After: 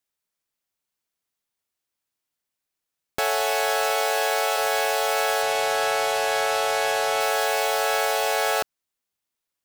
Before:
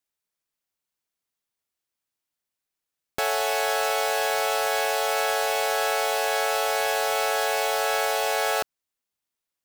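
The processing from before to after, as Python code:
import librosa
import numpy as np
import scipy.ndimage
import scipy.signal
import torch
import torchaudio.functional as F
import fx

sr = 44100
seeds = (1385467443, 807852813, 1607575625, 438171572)

y = fx.highpass(x, sr, hz=fx.line((3.95, 140.0), (4.56, 460.0)), slope=24, at=(3.95, 4.56), fade=0.02)
y = fx.resample_linear(y, sr, factor=2, at=(5.42, 7.21))
y = y * librosa.db_to_amplitude(1.5)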